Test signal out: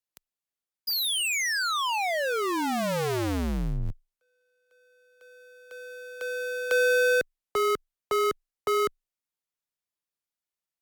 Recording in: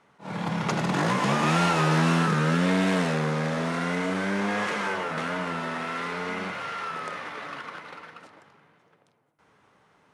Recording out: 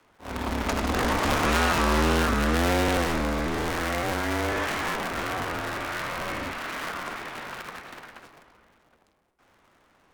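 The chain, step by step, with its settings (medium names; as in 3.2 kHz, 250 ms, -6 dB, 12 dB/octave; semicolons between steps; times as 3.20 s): cycle switcher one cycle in 2, inverted; frequency shift -19 Hz; MP3 224 kbps 48 kHz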